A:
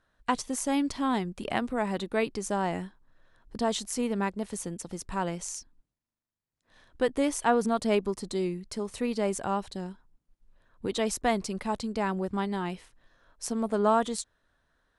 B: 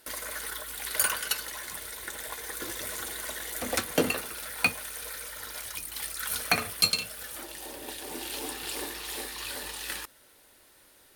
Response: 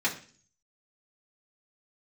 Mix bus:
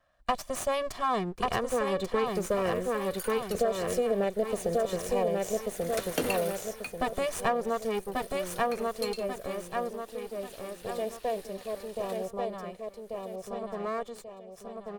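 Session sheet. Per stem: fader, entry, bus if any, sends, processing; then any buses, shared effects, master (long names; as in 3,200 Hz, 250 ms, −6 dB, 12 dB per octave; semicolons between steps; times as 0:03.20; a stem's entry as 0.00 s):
0:07.50 −1.5 dB → 0:08.22 −14 dB, 0.00 s, no send, echo send −3.5 dB, lower of the sound and its delayed copy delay 1.7 ms; parametric band 550 Hz +13 dB 1.8 octaves; auto-filter notch saw up 0.16 Hz 420–1,700 Hz
−0.5 dB, 2.20 s, no send, no echo send, automatic ducking −15 dB, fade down 0.25 s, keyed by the first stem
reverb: not used
echo: repeating echo 1,138 ms, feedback 40%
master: downward compressor 6 to 1, threshold −24 dBFS, peak gain reduction 9.5 dB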